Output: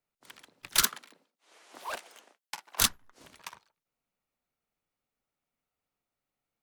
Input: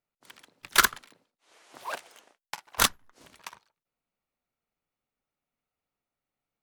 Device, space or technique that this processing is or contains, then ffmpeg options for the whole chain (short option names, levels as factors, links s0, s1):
one-band saturation: -filter_complex "[0:a]asettb=1/sr,asplit=3[s0][s1][s2];[s0]atrim=end=0.824[s3];[s1]atrim=start=0.82:end=2.81,asetpts=PTS-STARTPTS,afade=t=in:d=0.004:c=qsin,afade=t=out:st=1.986:d=0.004:c=qsin,highpass=f=180:w=0.5412,highpass=f=180:w=1.3066[s4];[s2]atrim=start=2.806[s5];[s3][s4]acrossfade=d=0.004:c1=hsin:c2=qsin[s6];[s6][s5]acrossfade=d=0.004:c1=qsin:c2=hsin,acrossover=split=260|2800[s7][s8][s9];[s8]asoftclip=type=tanh:threshold=0.0316[s10];[s7][s10][s9]amix=inputs=3:normalize=0"